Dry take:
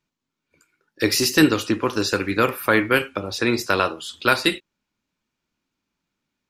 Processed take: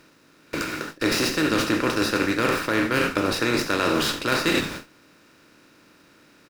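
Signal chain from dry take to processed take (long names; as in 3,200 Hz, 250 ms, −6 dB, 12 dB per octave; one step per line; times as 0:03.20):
compressor on every frequency bin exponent 0.4
on a send: echo with shifted repeats 83 ms, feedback 32%, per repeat −94 Hz, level −14 dB
on the sum: bit-depth reduction 8 bits, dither none
reversed playback
downward compressor 20 to 1, threshold −21 dBFS, peak gain reduction 15.5 dB
reversed playback
noise gate with hold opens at −24 dBFS
windowed peak hold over 3 samples
level +3 dB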